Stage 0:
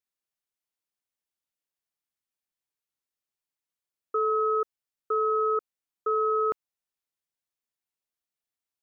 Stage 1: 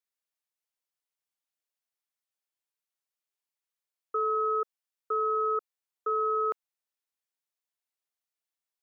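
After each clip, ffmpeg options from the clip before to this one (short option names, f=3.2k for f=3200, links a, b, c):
-af "highpass=420,volume=-1.5dB"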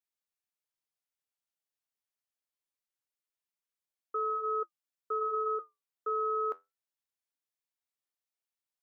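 -af "flanger=delay=3.2:depth=8.6:regen=-69:speed=0.24:shape=sinusoidal"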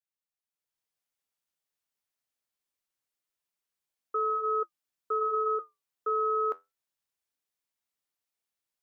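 -af "dynaudnorm=f=420:g=3:m=10dB,volume=-6.5dB"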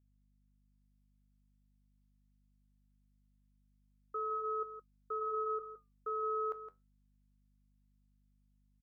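-af "aeval=exprs='val(0)+0.000794*(sin(2*PI*50*n/s)+sin(2*PI*2*50*n/s)/2+sin(2*PI*3*50*n/s)/3+sin(2*PI*4*50*n/s)/4+sin(2*PI*5*50*n/s)/5)':c=same,aecho=1:1:165:0.282,volume=-9dB"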